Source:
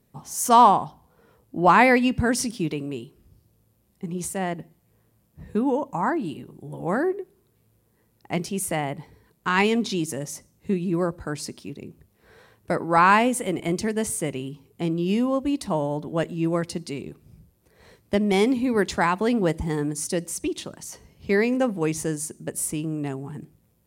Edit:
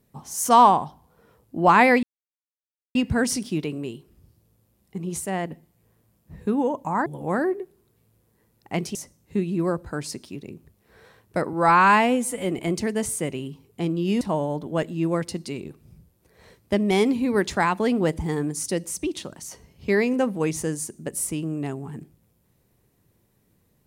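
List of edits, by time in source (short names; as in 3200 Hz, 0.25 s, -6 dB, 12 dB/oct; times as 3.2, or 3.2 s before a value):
2.03 insert silence 0.92 s
6.14–6.65 cut
8.54–10.29 cut
12.87–13.53 stretch 1.5×
15.22–15.62 cut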